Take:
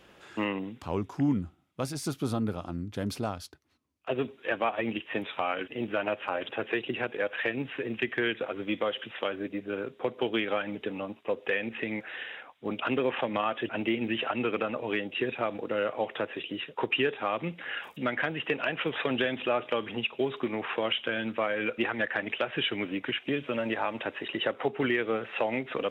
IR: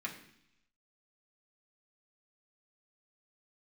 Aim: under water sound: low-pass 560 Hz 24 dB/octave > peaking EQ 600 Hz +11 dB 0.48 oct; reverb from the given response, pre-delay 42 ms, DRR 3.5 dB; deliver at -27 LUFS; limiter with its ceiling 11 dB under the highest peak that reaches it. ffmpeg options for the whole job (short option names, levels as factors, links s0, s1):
-filter_complex "[0:a]alimiter=level_in=1.19:limit=0.0631:level=0:latency=1,volume=0.841,asplit=2[s0][s1];[1:a]atrim=start_sample=2205,adelay=42[s2];[s1][s2]afir=irnorm=-1:irlink=0,volume=0.562[s3];[s0][s3]amix=inputs=2:normalize=0,lowpass=f=560:w=0.5412,lowpass=f=560:w=1.3066,equalizer=f=600:t=o:w=0.48:g=11,volume=2.66"